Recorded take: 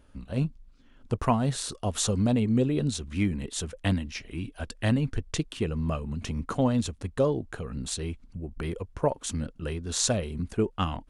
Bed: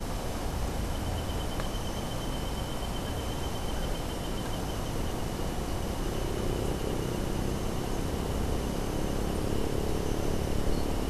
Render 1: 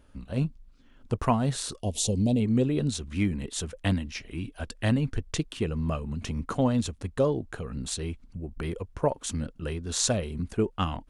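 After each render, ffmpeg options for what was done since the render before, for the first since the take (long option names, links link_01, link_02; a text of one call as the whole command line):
ffmpeg -i in.wav -filter_complex "[0:a]asettb=1/sr,asplit=3[link_01][link_02][link_03];[link_01]atrim=end=1.804[link_04];[link_02]atrim=start=1.8:end=2.4,asetpts=PTS-STARTPTS,afade=type=in:duration=0.004:curve=qsin,afade=type=out:start_time=0.596:duration=0.004:curve=qsin,asuperstop=centerf=1400:order=4:qfactor=0.64[link_05];[link_03]atrim=start=2.396[link_06];[link_04][link_05]acrossfade=duration=0.004:curve1=hsin:curve2=qsin[link_07];[link_07][link_06]acrossfade=duration=0.004:curve1=qsin:curve2=hsin" out.wav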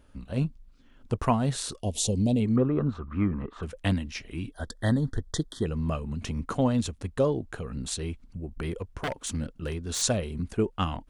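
ffmpeg -i in.wav -filter_complex "[0:a]asettb=1/sr,asplit=3[link_01][link_02][link_03];[link_01]atrim=end=2.564[link_04];[link_02]atrim=start=2.56:end=3.63,asetpts=PTS-STARTPTS,afade=type=in:duration=0.004:curve=qsin,afade=type=out:start_time=1.066:duration=0.004:curve=qsin,lowpass=frequency=1200:width_type=q:width=9.7[link_05];[link_03]atrim=start=3.626[link_06];[link_04][link_05]acrossfade=duration=0.004:curve1=hsin:curve2=qsin[link_07];[link_07][link_06]acrossfade=duration=0.004:curve1=qsin:curve2=hsin,asettb=1/sr,asplit=3[link_08][link_09][link_10];[link_08]atrim=end=4.524[link_11];[link_09]atrim=start=4.52:end=5.66,asetpts=PTS-STARTPTS,afade=type=in:duration=0.004:curve=qsin,afade=type=out:start_time=1.136:duration=0.004:curve=qsin,asuperstop=centerf=2500:order=20:qfactor=2.1[link_12];[link_10]atrim=start=5.656[link_13];[link_11][link_12]acrossfade=duration=0.004:curve1=hsin:curve2=qsin[link_14];[link_14][link_13]acrossfade=duration=0.004:curve1=qsin:curve2=hsin,asplit=3[link_15][link_16][link_17];[link_15]afade=type=out:start_time=8.78:duration=0.02[link_18];[link_16]aeval=exprs='0.0631*(abs(mod(val(0)/0.0631+3,4)-2)-1)':channel_layout=same,afade=type=in:start_time=8.78:duration=0.02,afade=type=out:start_time=10.01:duration=0.02[link_19];[link_17]afade=type=in:start_time=10.01:duration=0.02[link_20];[link_18][link_19][link_20]amix=inputs=3:normalize=0" out.wav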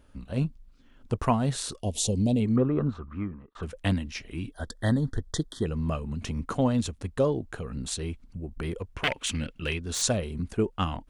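ffmpeg -i in.wav -filter_complex "[0:a]asettb=1/sr,asplit=3[link_01][link_02][link_03];[link_01]atrim=end=8.974[link_04];[link_02]atrim=start=8.97:end=9.8,asetpts=PTS-STARTPTS,afade=type=in:duration=0.004:curve=qsin,afade=type=out:start_time=0.826:duration=0.004:curve=qsin,equalizer=frequency=2600:width=1.3:gain=14.5[link_05];[link_03]atrim=start=9.796[link_06];[link_04][link_05]acrossfade=duration=0.004:curve1=hsin:curve2=qsin[link_07];[link_07][link_06]acrossfade=duration=0.004:curve1=qsin:curve2=hsin,asplit=2[link_08][link_09];[link_08]atrim=end=3.55,asetpts=PTS-STARTPTS,afade=type=out:start_time=2.85:duration=0.7[link_10];[link_09]atrim=start=3.55,asetpts=PTS-STARTPTS,afade=type=in:duration=0.004:curve=hsin[link_11];[link_10][link_11]concat=n=2:v=0:a=1" out.wav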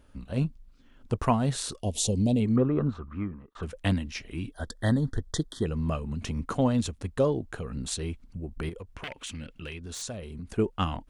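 ffmpeg -i in.wav -filter_complex "[0:a]asettb=1/sr,asplit=3[link_01][link_02][link_03];[link_01]atrim=end=8.694[link_04];[link_02]atrim=start=8.69:end=10.48,asetpts=PTS-STARTPTS,afade=type=in:duration=0.004:curve=qsin,afade=type=out:start_time=1.786:duration=0.004:curve=qsin,acompressor=threshold=-39dB:ratio=2.5:attack=3.2:release=140:knee=1:detection=peak[link_05];[link_03]atrim=start=10.476[link_06];[link_04][link_05]acrossfade=duration=0.004:curve1=hsin:curve2=qsin[link_07];[link_07][link_06]acrossfade=duration=0.004:curve1=qsin:curve2=hsin" out.wav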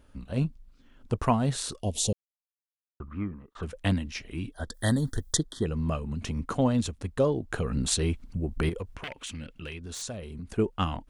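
ffmpeg -i in.wav -filter_complex "[0:a]asettb=1/sr,asplit=3[link_01][link_02][link_03];[link_01]atrim=end=4.744[link_04];[link_02]atrim=start=4.74:end=5.37,asetpts=PTS-STARTPTS,afade=type=in:duration=0.004:curve=qsin,afade=type=out:start_time=0.626:duration=0.004:curve=qsin,aemphasis=mode=production:type=75fm[link_05];[link_03]atrim=start=5.366[link_06];[link_04][link_05]acrossfade=duration=0.004:curve1=hsin:curve2=qsin[link_07];[link_07][link_06]acrossfade=duration=0.004:curve1=qsin:curve2=hsin,asplit=3[link_08][link_09][link_10];[link_08]afade=type=out:start_time=7.5:duration=0.02[link_11];[link_09]acontrast=56,afade=type=in:start_time=7.5:duration=0.02,afade=type=out:start_time=8.95:duration=0.02[link_12];[link_10]afade=type=in:start_time=8.95:duration=0.02[link_13];[link_11][link_12][link_13]amix=inputs=3:normalize=0,asplit=3[link_14][link_15][link_16];[link_14]atrim=end=2.13,asetpts=PTS-STARTPTS,afade=type=out:start_time=2.126:duration=0.004:curve=hsin[link_17];[link_15]atrim=start=2.13:end=3,asetpts=PTS-STARTPTS,volume=0[link_18];[link_16]atrim=start=3,asetpts=PTS-STARTPTS,afade=type=in:duration=0.004:curve=hsin[link_19];[link_17][link_18][link_19]concat=n=3:v=0:a=1" out.wav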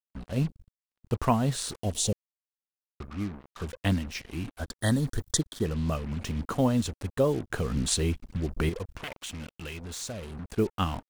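ffmpeg -i in.wav -af "acrusher=bits=6:mix=0:aa=0.5" out.wav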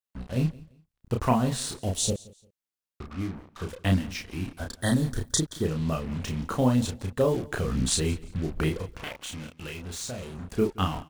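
ffmpeg -i in.wav -filter_complex "[0:a]asplit=2[link_01][link_02];[link_02]adelay=32,volume=-4dB[link_03];[link_01][link_03]amix=inputs=2:normalize=0,aecho=1:1:173|346:0.0794|0.0207" out.wav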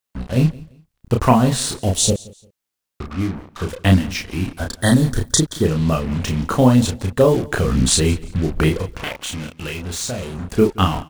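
ffmpeg -i in.wav -af "volume=10dB,alimiter=limit=-1dB:level=0:latency=1" out.wav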